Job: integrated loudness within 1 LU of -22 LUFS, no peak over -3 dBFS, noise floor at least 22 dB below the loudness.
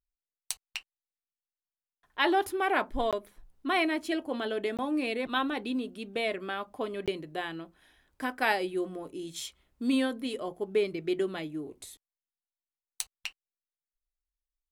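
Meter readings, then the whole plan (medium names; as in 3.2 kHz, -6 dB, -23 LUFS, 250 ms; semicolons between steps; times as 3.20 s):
dropouts 3; longest dropout 17 ms; loudness -32.0 LUFS; peak level -10.0 dBFS; loudness target -22.0 LUFS
-> interpolate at 3.11/4.77/7.06 s, 17 ms; trim +10 dB; peak limiter -3 dBFS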